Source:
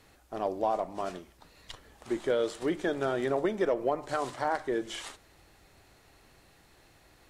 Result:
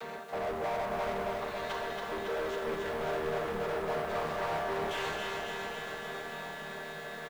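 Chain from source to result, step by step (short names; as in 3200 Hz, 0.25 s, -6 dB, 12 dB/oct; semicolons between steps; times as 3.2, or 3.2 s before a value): chord vocoder major triad, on D#3; in parallel at -1.5 dB: vocal rider within 4 dB; on the sum: comb 4.6 ms, depth 52%; reverse; compressor, threshold -33 dBFS, peak gain reduction 16 dB; reverse; Schroeder reverb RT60 1.6 s, combs from 31 ms, DRR 9.5 dB; overdrive pedal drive 33 dB, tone 1100 Hz, clips at -23.5 dBFS; bell 250 Hz -10 dB 0.9 oct; bit-crush 10-bit; low shelf 470 Hz -4 dB; lo-fi delay 0.277 s, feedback 80%, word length 10-bit, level -4.5 dB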